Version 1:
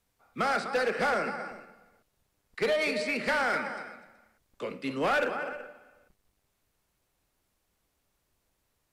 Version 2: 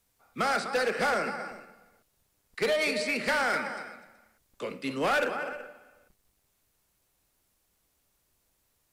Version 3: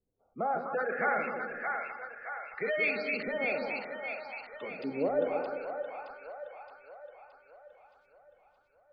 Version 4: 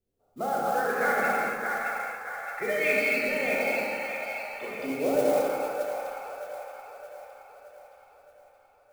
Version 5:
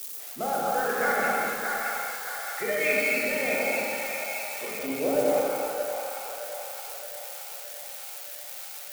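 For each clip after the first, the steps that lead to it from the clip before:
high-shelf EQ 5,000 Hz +7.5 dB
gate on every frequency bin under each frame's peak −20 dB strong; auto-filter low-pass saw up 0.62 Hz 380–4,200 Hz; echo with a time of its own for lows and highs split 600 Hz, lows 170 ms, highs 620 ms, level −4 dB; level −6.5 dB
reverb whose tail is shaped and stops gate 320 ms flat, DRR −4.5 dB; noise that follows the level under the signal 19 dB
spike at every zero crossing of −27.5 dBFS

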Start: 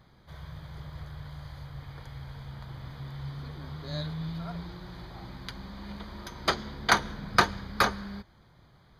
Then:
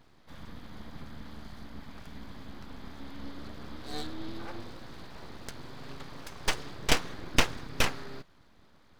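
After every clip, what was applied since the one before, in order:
full-wave rectification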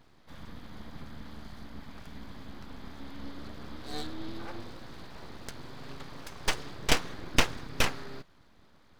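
no processing that can be heard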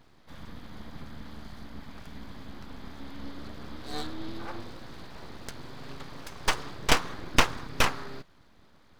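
dynamic equaliser 1,100 Hz, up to +6 dB, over −48 dBFS, Q 1.5
level +1.5 dB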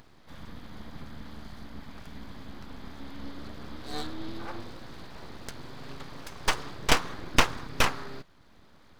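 upward compression, threshold −49 dBFS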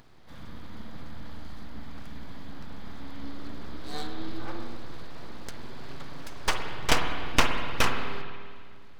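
spring reverb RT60 2 s, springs 50/58 ms, chirp 40 ms, DRR 4.5 dB
level −1 dB

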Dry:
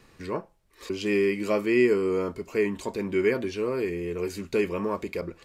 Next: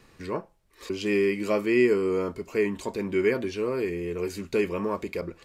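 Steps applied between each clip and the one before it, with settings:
no processing that can be heard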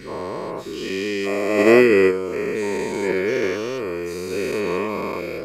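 every bin's largest magnitude spread in time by 480 ms
noise gate −15 dBFS, range −10 dB
level +6 dB

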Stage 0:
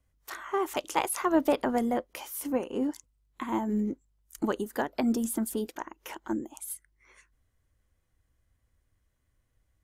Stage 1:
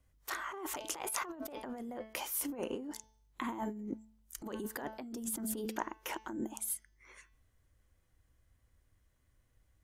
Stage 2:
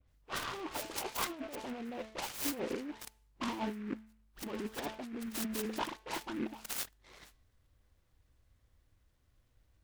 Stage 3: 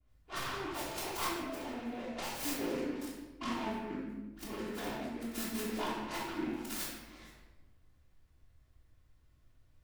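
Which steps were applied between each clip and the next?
hum removal 218.9 Hz, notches 29; compressor whose output falls as the input rises −36 dBFS, ratio −1; level −4 dB
all-pass dispersion highs, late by 88 ms, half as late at 2,400 Hz; short delay modulated by noise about 1,600 Hz, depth 0.086 ms; level +1 dB
convolution reverb RT60 1.1 s, pre-delay 3 ms, DRR −7 dB; level −6.5 dB

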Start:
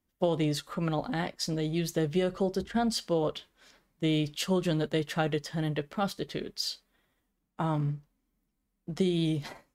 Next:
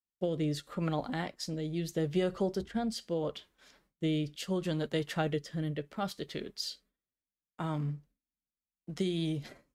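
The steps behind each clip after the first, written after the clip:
noise gate with hold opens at −57 dBFS
rotating-speaker cabinet horn 0.75 Hz
level −2 dB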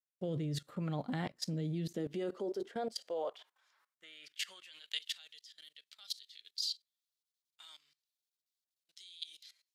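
high-pass filter sweep 120 Hz → 3,900 Hz, 0:01.30–0:05.22
output level in coarse steps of 19 dB
level +2 dB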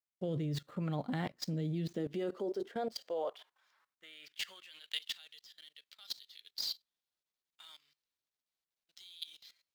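running median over 5 samples
level +1 dB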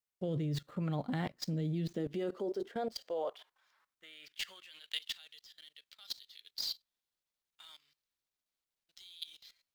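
low-shelf EQ 64 Hz +8.5 dB

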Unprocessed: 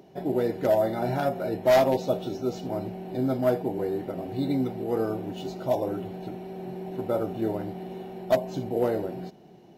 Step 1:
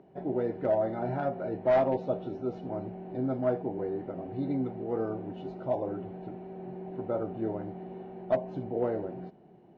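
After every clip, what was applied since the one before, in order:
low-pass filter 1,800 Hz 12 dB per octave
level −4.5 dB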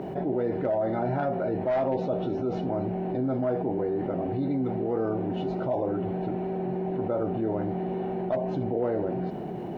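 envelope flattener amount 70%
level −3 dB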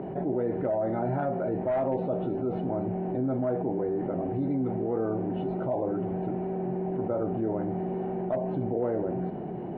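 high-frequency loss of the air 470 metres
mains-hum notches 50/100 Hz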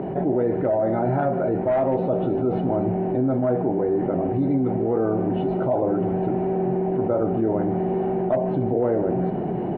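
slap from a distant wall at 26 metres, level −14 dB
in parallel at +2 dB: speech leveller within 4 dB 0.5 s

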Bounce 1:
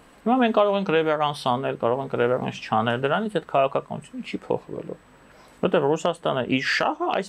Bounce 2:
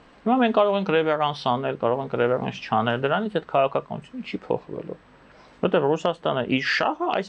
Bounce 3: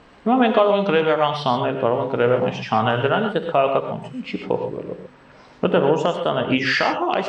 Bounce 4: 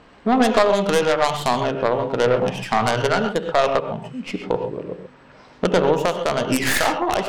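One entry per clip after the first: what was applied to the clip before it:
low-pass filter 5,900 Hz 24 dB per octave
reverb whose tail is shaped and stops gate 150 ms rising, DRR 5.5 dB; level +2.5 dB
stylus tracing distortion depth 0.26 ms

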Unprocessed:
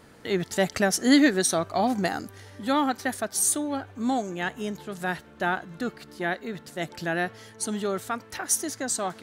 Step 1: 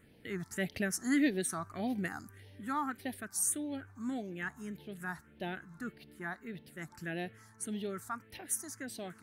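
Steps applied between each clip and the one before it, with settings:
all-pass phaser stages 4, 1.7 Hz, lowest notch 480–1,300 Hz
level −8 dB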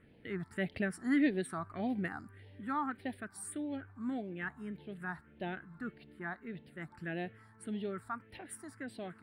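moving average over 7 samples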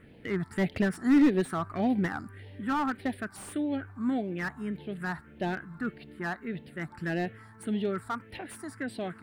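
slew-rate limiting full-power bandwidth 18 Hz
level +8.5 dB

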